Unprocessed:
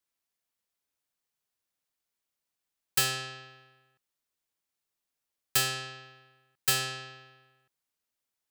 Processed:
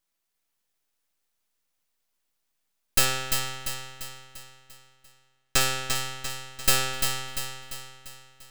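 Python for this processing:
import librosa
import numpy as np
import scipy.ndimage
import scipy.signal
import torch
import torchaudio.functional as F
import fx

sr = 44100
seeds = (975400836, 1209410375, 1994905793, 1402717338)

y = fx.median_filter(x, sr, points=3, at=(3.05, 5.61))
y = np.maximum(y, 0.0)
y = fx.echo_feedback(y, sr, ms=345, feedback_pct=50, wet_db=-5.5)
y = y * 10.0 ** (9.0 / 20.0)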